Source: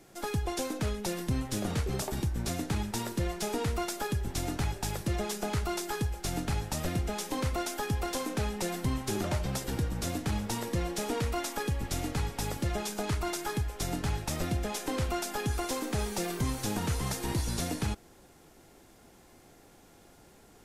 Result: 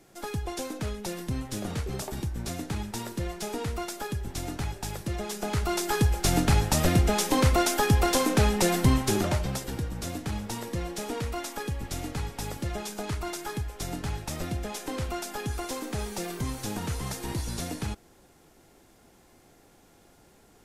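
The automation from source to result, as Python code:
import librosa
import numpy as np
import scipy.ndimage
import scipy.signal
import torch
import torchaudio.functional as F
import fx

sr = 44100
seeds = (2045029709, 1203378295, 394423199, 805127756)

y = fx.gain(x, sr, db=fx.line((5.22, -1.0), (6.13, 9.5), (8.9, 9.5), (9.75, -1.0)))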